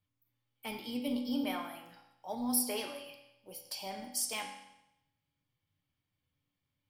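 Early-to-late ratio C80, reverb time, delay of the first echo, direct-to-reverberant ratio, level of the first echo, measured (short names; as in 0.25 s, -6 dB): 8.5 dB, 0.85 s, none, 2.0 dB, none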